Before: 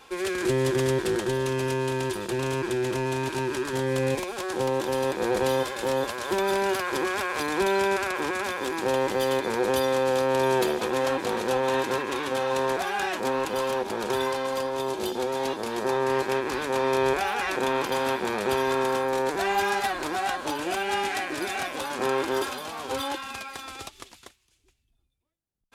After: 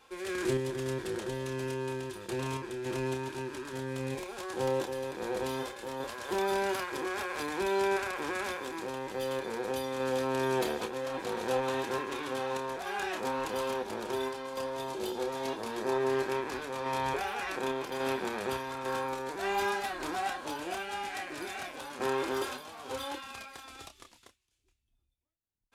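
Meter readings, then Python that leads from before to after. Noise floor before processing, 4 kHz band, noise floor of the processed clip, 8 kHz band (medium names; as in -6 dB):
-66 dBFS, -8.0 dB, -73 dBFS, -8.0 dB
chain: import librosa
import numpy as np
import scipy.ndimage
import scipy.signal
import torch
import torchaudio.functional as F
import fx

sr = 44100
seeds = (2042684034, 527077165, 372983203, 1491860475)

y = fx.tremolo_random(x, sr, seeds[0], hz=3.5, depth_pct=55)
y = fx.chorus_voices(y, sr, voices=6, hz=0.13, base_ms=29, depth_ms=2.2, mix_pct=30)
y = y * librosa.db_to_amplitude(-3.0)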